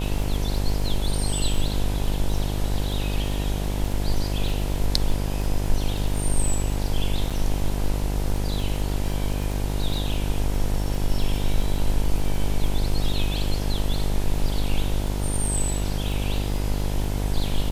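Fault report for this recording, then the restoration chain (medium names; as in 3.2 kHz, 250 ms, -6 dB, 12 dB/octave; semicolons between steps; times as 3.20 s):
buzz 50 Hz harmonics 20 -26 dBFS
crackle 24 per s -28 dBFS
7.30–7.31 s: dropout 6.2 ms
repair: de-click; de-hum 50 Hz, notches 20; interpolate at 7.30 s, 6.2 ms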